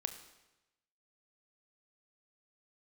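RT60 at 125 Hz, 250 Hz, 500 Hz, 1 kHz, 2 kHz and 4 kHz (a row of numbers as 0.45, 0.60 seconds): 1.1, 1.0, 1.0, 1.0, 0.95, 0.95 seconds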